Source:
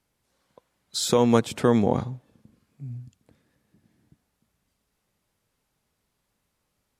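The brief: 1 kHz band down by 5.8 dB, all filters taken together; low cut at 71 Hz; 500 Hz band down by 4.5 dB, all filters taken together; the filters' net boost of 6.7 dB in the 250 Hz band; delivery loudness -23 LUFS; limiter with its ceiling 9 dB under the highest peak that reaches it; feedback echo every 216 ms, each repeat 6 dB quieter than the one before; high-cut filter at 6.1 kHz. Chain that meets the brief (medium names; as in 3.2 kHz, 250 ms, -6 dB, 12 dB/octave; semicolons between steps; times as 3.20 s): high-pass 71 Hz; low-pass 6.1 kHz; peaking EQ 250 Hz +9 dB; peaking EQ 500 Hz -7 dB; peaking EQ 1 kHz -5.5 dB; peak limiter -13.5 dBFS; feedback delay 216 ms, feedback 50%, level -6 dB; trim +2 dB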